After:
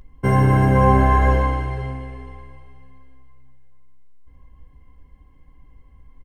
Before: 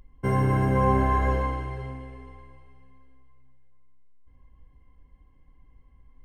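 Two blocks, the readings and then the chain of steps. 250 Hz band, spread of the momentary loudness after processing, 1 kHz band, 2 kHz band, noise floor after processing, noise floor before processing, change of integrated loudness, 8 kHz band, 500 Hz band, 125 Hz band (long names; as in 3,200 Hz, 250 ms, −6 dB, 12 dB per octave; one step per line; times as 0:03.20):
+7.0 dB, 16 LU, +7.0 dB, +8.0 dB, −51 dBFS, −57 dBFS, +7.5 dB, can't be measured, +6.0 dB, +8.0 dB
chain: double-tracking delay 14 ms −13 dB
level +7 dB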